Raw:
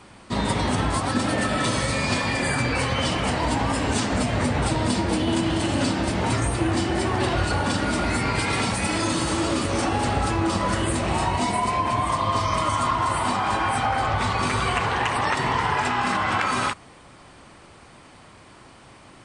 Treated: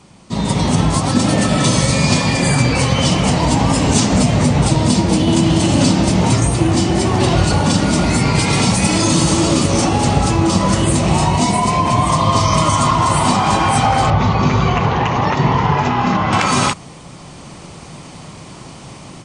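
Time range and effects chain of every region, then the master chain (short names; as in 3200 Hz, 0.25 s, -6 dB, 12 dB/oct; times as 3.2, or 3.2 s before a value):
14.1–16.33 tape spacing loss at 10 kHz 22 dB + careless resampling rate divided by 3×, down none, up filtered
whole clip: fifteen-band EQ 160 Hz +10 dB, 1600 Hz -7 dB, 6300 Hz +7 dB; AGC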